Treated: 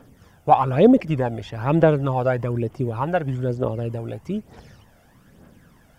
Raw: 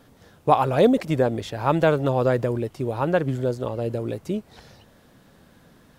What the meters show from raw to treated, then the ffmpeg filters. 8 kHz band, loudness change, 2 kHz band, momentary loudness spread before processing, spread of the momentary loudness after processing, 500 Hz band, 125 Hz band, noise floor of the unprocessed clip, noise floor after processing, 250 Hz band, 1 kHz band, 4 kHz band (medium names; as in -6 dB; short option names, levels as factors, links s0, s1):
no reading, +1.5 dB, -1.0 dB, 11 LU, 14 LU, +0.5 dB, +3.0 dB, -55 dBFS, -55 dBFS, +3.0 dB, +2.0 dB, -4.0 dB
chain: -filter_complex "[0:a]acrossover=split=5100[s0][s1];[s1]acompressor=threshold=0.00112:ratio=4:attack=1:release=60[s2];[s0][s2]amix=inputs=2:normalize=0,aphaser=in_gain=1:out_gain=1:delay=1.5:decay=0.54:speed=1.1:type=triangular,equalizer=f=4000:w=4.8:g=-11,volume=0.891"